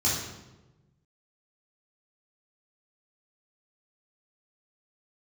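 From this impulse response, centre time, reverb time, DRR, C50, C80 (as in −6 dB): 63 ms, 1.1 s, −8.0 dB, 1.0 dB, 4.5 dB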